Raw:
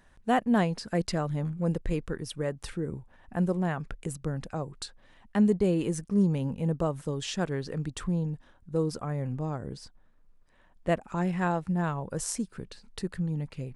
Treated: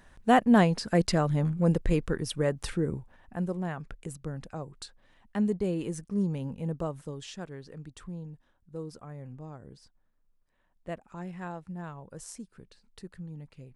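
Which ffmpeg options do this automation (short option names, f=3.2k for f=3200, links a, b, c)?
-af "volume=4dB,afade=t=out:st=2.83:d=0.53:silence=0.375837,afade=t=out:st=6.85:d=0.6:silence=0.473151"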